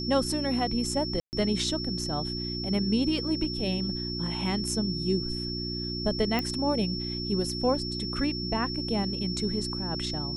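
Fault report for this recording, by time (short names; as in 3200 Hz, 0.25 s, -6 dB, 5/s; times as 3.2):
hum 60 Hz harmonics 6 -35 dBFS
tone 5400 Hz -34 dBFS
1.2–1.33 gap 0.129 s
6.39 pop -15 dBFS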